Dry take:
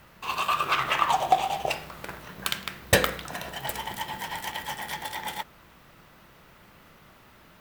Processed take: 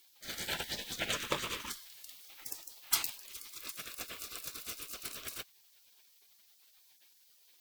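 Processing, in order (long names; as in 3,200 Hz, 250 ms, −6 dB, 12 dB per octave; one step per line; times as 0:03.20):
gate on every frequency bin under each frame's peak −20 dB weak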